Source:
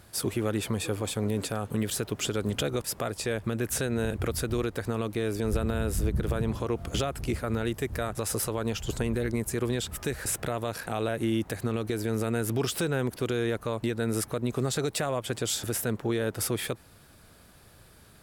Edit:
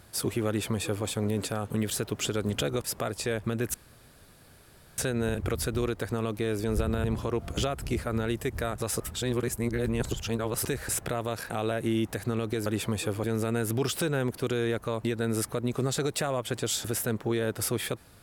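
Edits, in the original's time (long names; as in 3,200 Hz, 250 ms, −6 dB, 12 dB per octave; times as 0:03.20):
0:00.48–0:01.06: duplicate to 0:12.03
0:03.74: splice in room tone 1.24 s
0:05.80–0:06.41: remove
0:08.37–0:10.02: reverse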